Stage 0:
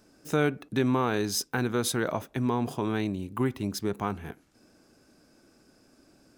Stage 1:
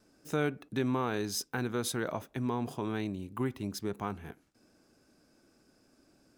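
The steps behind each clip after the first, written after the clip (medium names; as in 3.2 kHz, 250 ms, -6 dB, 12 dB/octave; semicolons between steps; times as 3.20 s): gate with hold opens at -54 dBFS; trim -5.5 dB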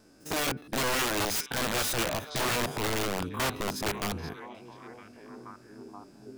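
spectrogram pixelated in time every 50 ms; repeats whose band climbs or falls 479 ms, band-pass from 3.7 kHz, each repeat -0.7 oct, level -6.5 dB; integer overflow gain 31.5 dB; trim +8 dB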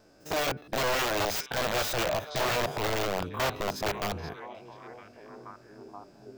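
fifteen-band graphic EQ 250 Hz -6 dB, 630 Hz +6 dB, 10 kHz -10 dB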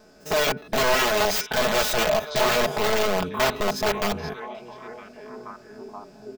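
comb 4.7 ms, depth 70%; trim +5 dB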